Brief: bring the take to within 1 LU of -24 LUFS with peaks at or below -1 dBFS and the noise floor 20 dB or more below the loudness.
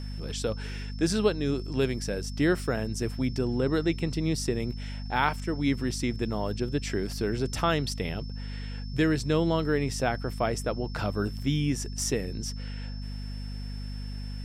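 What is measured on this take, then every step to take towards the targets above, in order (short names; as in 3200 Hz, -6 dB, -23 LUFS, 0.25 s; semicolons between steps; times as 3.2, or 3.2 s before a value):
hum 50 Hz; harmonics up to 250 Hz; hum level -33 dBFS; steady tone 5300 Hz; tone level -48 dBFS; loudness -29.5 LUFS; peak -9.0 dBFS; loudness target -24.0 LUFS
-> notches 50/100/150/200/250 Hz; notch 5300 Hz, Q 30; gain +5.5 dB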